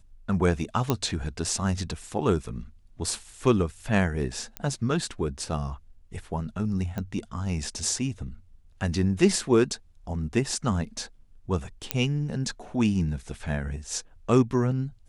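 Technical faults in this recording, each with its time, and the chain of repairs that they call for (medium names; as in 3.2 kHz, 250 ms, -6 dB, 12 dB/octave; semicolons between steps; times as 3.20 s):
0.90 s: pop -9 dBFS
4.57 s: pop -15 dBFS
6.98 s: pop -19 dBFS
11.91 s: pop -6 dBFS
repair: de-click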